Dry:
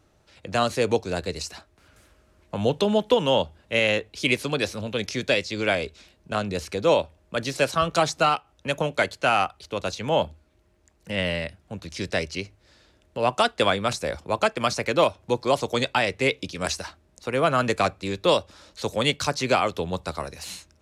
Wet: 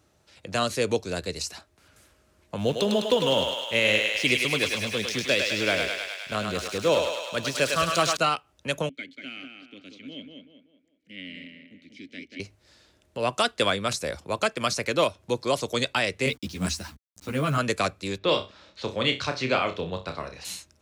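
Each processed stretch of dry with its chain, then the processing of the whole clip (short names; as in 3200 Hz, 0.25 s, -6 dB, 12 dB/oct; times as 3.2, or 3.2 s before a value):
2.58–8.17 backlash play -41 dBFS + thinning echo 0.103 s, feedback 78%, high-pass 600 Hz, level -3 dB
8.89–12.4 vowel filter i + tape echo 0.188 s, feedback 42%, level -3.5 dB, low-pass 2800 Hz
16.26–17.58 level-crossing sampler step -43 dBFS + resonant low shelf 330 Hz +8 dB, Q 1.5 + ensemble effect
18.18–20.45 Chebyshev low-pass 3200 Hz + flutter echo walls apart 5.3 m, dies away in 0.26 s
whole clip: dynamic EQ 820 Hz, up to -6 dB, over -40 dBFS, Q 3.7; HPF 61 Hz; high shelf 3900 Hz +6 dB; gain -2.5 dB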